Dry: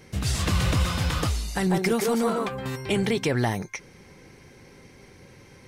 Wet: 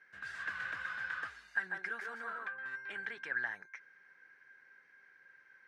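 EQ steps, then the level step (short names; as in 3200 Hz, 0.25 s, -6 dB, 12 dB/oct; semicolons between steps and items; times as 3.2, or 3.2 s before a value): band-pass 1600 Hz, Q 17; +6.5 dB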